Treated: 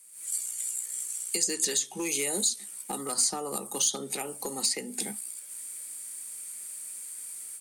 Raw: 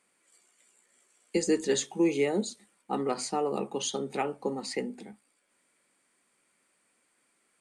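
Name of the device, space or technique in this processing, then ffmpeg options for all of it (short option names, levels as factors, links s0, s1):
FM broadcast chain: -filter_complex "[0:a]asettb=1/sr,asplit=3[s0][s1][s2];[s0]atrim=end=2.974[s3];[s1]atrim=start=2.97:end=4.03,asetpts=PTS-STARTPTS,afade=t=in:d=0.004:c=qsin,afade=t=out:st=1.056:d=0.004:c=qsin,equalizer=f=400:t=o:w=0.33:g=-4,equalizer=f=1250:t=o:w=0.33:g=6,equalizer=f=2500:t=o:w=0.33:g=-10[s4];[s2]atrim=start=4.026[s5];[s3][s4]acrossfade=d=0.004:c1=hsin:c2=qsin[s6];[s6][s5]acrossfade=d=0.004:c1=qsin:c2=hsin,highpass=43,dynaudnorm=f=120:g=3:m=5.01,acrossover=split=130|780|5500[s7][s8][s9][s10];[s7]acompressor=threshold=0.00282:ratio=4[s11];[s8]acompressor=threshold=0.0501:ratio=4[s12];[s9]acompressor=threshold=0.0224:ratio=4[s13];[s10]acompressor=threshold=0.00631:ratio=4[s14];[s11][s12][s13][s14]amix=inputs=4:normalize=0,aemphasis=mode=production:type=75fm,alimiter=limit=0.126:level=0:latency=1:release=404,asoftclip=type=hard:threshold=0.0841,lowpass=f=15000:w=0.5412,lowpass=f=15000:w=1.3066,aemphasis=mode=production:type=75fm,volume=0.562"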